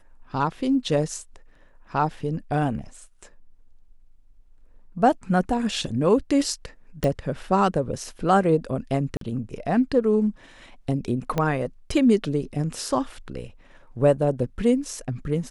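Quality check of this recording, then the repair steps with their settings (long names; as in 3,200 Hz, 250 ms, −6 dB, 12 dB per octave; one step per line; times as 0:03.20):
0:07.04: click −13 dBFS
0:09.17–0:09.21: drop-out 43 ms
0:11.38: click −11 dBFS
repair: click removal
repair the gap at 0:09.17, 43 ms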